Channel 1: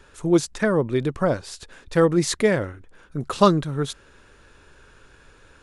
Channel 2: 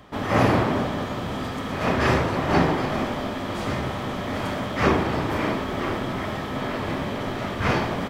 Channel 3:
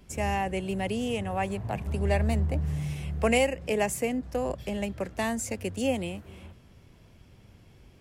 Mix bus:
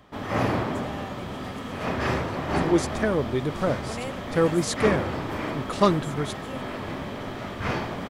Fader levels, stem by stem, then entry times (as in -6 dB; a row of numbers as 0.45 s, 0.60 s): -4.0 dB, -5.5 dB, -13.0 dB; 2.40 s, 0.00 s, 0.65 s